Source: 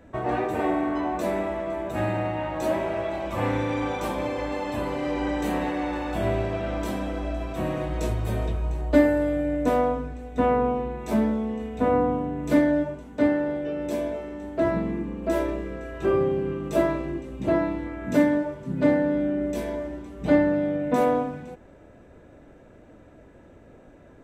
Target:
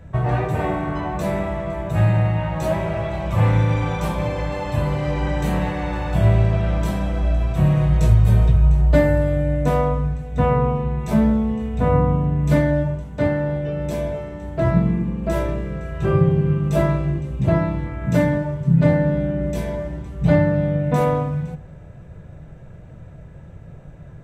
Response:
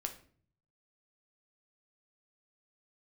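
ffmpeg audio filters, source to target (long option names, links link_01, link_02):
-filter_complex "[0:a]lowshelf=frequency=200:width_type=q:width=3:gain=9.5,asplit=2[link_01][link_02];[1:a]atrim=start_sample=2205,asetrate=26901,aresample=44100[link_03];[link_02][link_03]afir=irnorm=-1:irlink=0,volume=-8dB[link_04];[link_01][link_04]amix=inputs=2:normalize=0"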